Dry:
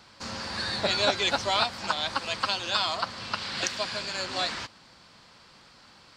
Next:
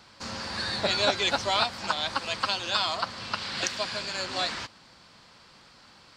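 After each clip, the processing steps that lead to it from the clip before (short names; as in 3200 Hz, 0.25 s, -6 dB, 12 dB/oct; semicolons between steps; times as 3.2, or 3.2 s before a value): nothing audible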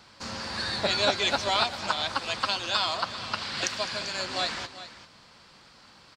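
tapped delay 0.207/0.392 s -17.5/-14.5 dB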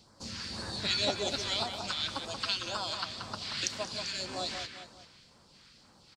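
phaser stages 2, 1.9 Hz, lowest notch 590–2700 Hz; speakerphone echo 0.18 s, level -6 dB; gain -3 dB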